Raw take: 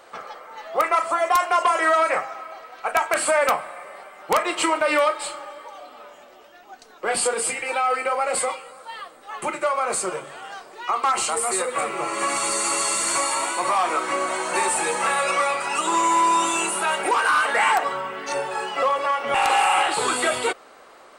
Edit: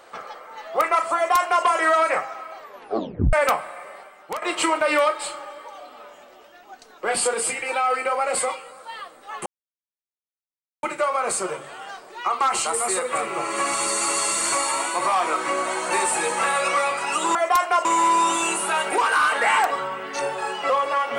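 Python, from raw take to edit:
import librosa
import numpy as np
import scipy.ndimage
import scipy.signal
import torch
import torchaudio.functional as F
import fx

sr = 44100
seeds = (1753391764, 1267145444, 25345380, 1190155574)

y = fx.edit(x, sr, fx.duplicate(start_s=1.15, length_s=0.5, to_s=15.98),
    fx.tape_stop(start_s=2.59, length_s=0.74),
    fx.fade_out_to(start_s=3.9, length_s=0.52, floor_db=-14.0),
    fx.insert_silence(at_s=9.46, length_s=1.37), tone=tone)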